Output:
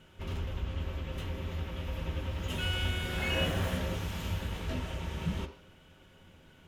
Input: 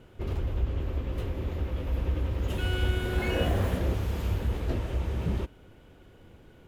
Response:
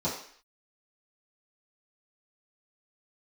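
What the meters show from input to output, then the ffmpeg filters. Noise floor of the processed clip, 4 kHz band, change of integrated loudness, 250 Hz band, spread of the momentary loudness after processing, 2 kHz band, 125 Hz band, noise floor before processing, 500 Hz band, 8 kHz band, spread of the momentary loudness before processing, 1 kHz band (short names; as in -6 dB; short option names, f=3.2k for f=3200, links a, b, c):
-59 dBFS, +3.5 dB, -4.5 dB, -4.0 dB, 8 LU, +0.5 dB, -5.5 dB, -54 dBFS, -5.5 dB, +2.5 dB, 6 LU, -2.5 dB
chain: -filter_complex "[0:a]lowpass=f=3.6k:p=1,tiltshelf=f=1.5k:g=-9.5,asplit=2[a][b];[1:a]atrim=start_sample=2205,lowpass=7.6k[c];[b][c]afir=irnorm=-1:irlink=0,volume=-12dB[d];[a][d]amix=inputs=2:normalize=0"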